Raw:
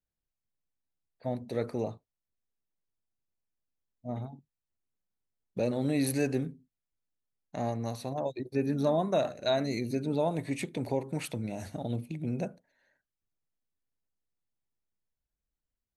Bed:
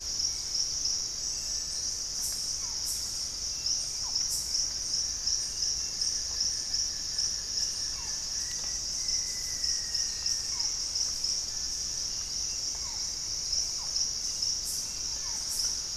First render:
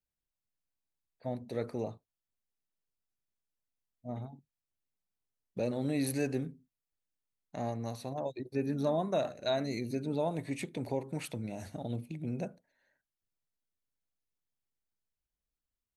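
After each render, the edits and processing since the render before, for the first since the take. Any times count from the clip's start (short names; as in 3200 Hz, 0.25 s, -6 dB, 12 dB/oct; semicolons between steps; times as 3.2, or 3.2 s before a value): gain -3.5 dB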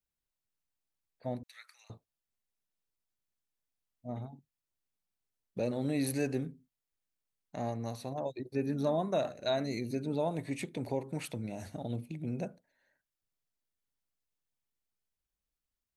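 1.43–1.9 inverse Chebyshev high-pass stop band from 360 Hz, stop band 70 dB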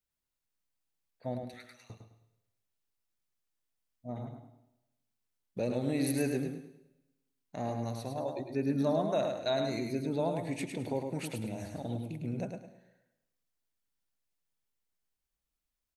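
on a send: feedback echo 0.105 s, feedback 28%, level -5.5 dB; on the sum: plate-style reverb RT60 0.94 s, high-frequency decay 0.95×, pre-delay 80 ms, DRR 14.5 dB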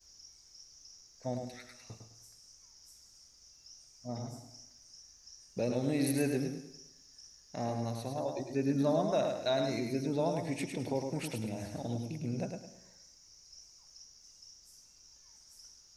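add bed -25 dB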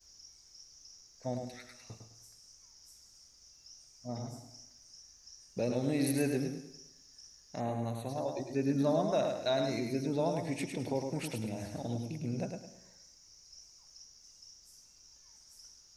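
7.6–8.09 Butterworth band-stop 5200 Hz, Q 1.9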